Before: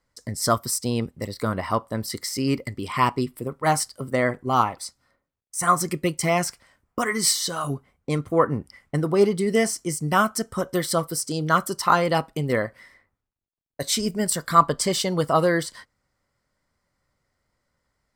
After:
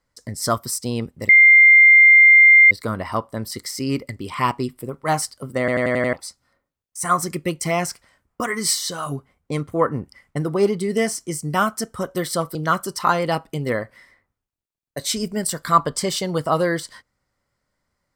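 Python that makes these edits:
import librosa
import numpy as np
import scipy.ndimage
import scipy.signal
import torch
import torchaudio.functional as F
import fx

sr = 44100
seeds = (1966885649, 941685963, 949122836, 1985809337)

y = fx.edit(x, sr, fx.insert_tone(at_s=1.29, length_s=1.42, hz=2100.0, db=-6.5),
    fx.stutter_over(start_s=4.17, slice_s=0.09, count=6),
    fx.cut(start_s=11.13, length_s=0.25), tone=tone)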